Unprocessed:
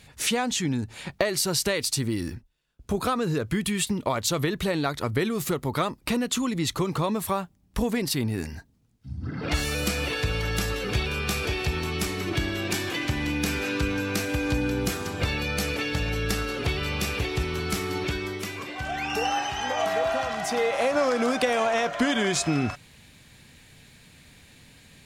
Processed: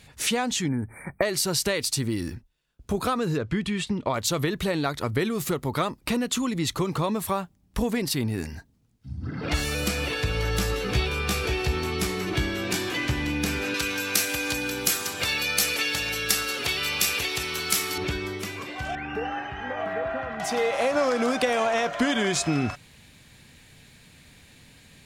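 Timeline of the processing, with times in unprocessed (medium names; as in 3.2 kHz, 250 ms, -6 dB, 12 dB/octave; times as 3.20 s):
0.68–1.23 s: spectral selection erased 2.4–8 kHz
3.37–4.14 s: distance through air 100 m
10.35–13.22 s: doubling 16 ms -6.5 dB
13.74–17.98 s: tilt EQ +3.5 dB/octave
18.95–20.40 s: FFT filter 380 Hz 0 dB, 910 Hz -7 dB, 1.7 kHz 0 dB, 5.9 kHz -25 dB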